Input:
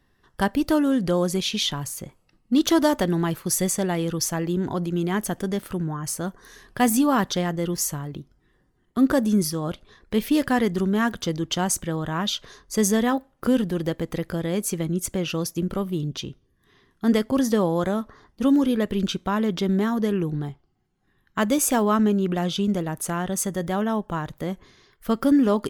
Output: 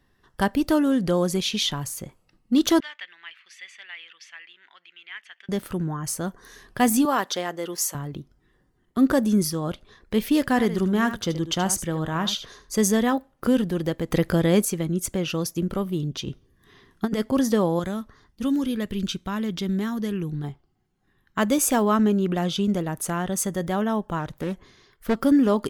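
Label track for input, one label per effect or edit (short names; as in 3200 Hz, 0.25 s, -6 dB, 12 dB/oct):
2.800000	5.490000	Butterworth band-pass 2400 Hz, Q 1.8
7.050000	7.950000	HPF 400 Hz
10.480000	12.760000	echo 76 ms -12 dB
14.110000	14.650000	gain +6.5 dB
16.270000	17.200000	negative-ratio compressor -23 dBFS, ratio -0.5
17.790000	20.440000	bell 630 Hz -8.5 dB 2.6 oct
24.190000	25.170000	Doppler distortion depth 0.45 ms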